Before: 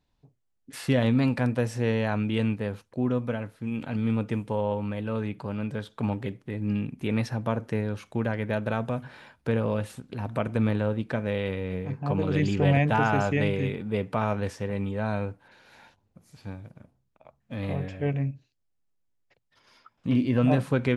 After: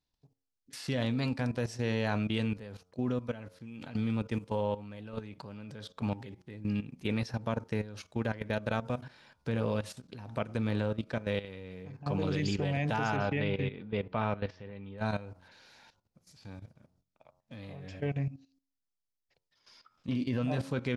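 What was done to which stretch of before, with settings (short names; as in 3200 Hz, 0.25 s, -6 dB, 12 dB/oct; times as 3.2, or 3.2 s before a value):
8.99–9.55 low shelf 200 Hz +4 dB
13.16–14.98 LPF 3800 Hz 24 dB/oct
whole clip: bell 5100 Hz +10.5 dB 1.1 oct; de-hum 90.32 Hz, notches 16; level quantiser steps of 14 dB; gain -2.5 dB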